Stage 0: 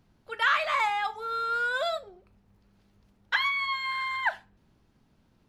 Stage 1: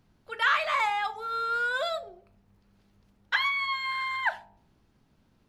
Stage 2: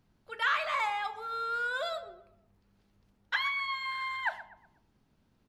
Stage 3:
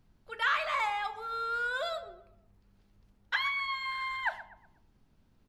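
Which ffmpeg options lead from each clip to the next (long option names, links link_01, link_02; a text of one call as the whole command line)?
ffmpeg -i in.wav -af "bandreject=frequency=56.84:width_type=h:width=4,bandreject=frequency=113.68:width_type=h:width=4,bandreject=frequency=170.52:width_type=h:width=4,bandreject=frequency=227.36:width_type=h:width=4,bandreject=frequency=284.2:width_type=h:width=4,bandreject=frequency=341.04:width_type=h:width=4,bandreject=frequency=397.88:width_type=h:width=4,bandreject=frequency=454.72:width_type=h:width=4,bandreject=frequency=511.56:width_type=h:width=4,bandreject=frequency=568.4:width_type=h:width=4,bandreject=frequency=625.24:width_type=h:width=4,bandreject=frequency=682.08:width_type=h:width=4,bandreject=frequency=738.92:width_type=h:width=4,bandreject=frequency=795.76:width_type=h:width=4,bandreject=frequency=852.6:width_type=h:width=4,bandreject=frequency=909.44:width_type=h:width=4,bandreject=frequency=966.28:width_type=h:width=4" out.wav
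ffmpeg -i in.wav -filter_complex "[0:a]asplit=2[link_01][link_02];[link_02]adelay=122,lowpass=frequency=2100:poles=1,volume=-14dB,asplit=2[link_03][link_04];[link_04]adelay=122,lowpass=frequency=2100:poles=1,volume=0.43,asplit=2[link_05][link_06];[link_06]adelay=122,lowpass=frequency=2100:poles=1,volume=0.43,asplit=2[link_07][link_08];[link_08]adelay=122,lowpass=frequency=2100:poles=1,volume=0.43[link_09];[link_01][link_03][link_05][link_07][link_09]amix=inputs=5:normalize=0,volume=-4.5dB" out.wav
ffmpeg -i in.wav -af "lowshelf=frequency=61:gain=11" out.wav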